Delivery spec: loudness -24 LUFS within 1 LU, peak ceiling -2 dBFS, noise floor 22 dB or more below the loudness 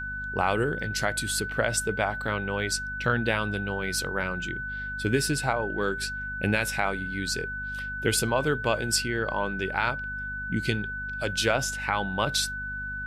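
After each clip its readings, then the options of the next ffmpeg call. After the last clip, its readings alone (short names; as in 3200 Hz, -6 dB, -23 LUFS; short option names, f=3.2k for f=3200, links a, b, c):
hum 50 Hz; harmonics up to 250 Hz; hum level -38 dBFS; steady tone 1500 Hz; tone level -32 dBFS; loudness -27.5 LUFS; peak -9.5 dBFS; loudness target -24.0 LUFS
-> -af "bandreject=f=50:t=h:w=6,bandreject=f=100:t=h:w=6,bandreject=f=150:t=h:w=6,bandreject=f=200:t=h:w=6,bandreject=f=250:t=h:w=6"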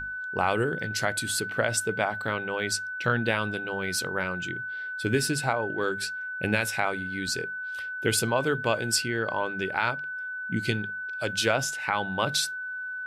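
hum none; steady tone 1500 Hz; tone level -32 dBFS
-> -af "bandreject=f=1.5k:w=30"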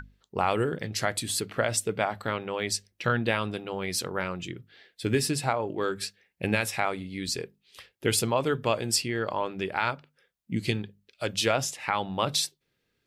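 steady tone none; loudness -29.0 LUFS; peak -10.0 dBFS; loudness target -24.0 LUFS
-> -af "volume=5dB"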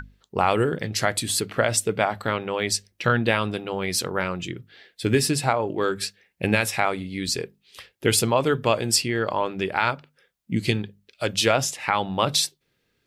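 loudness -24.0 LUFS; peak -5.0 dBFS; noise floor -72 dBFS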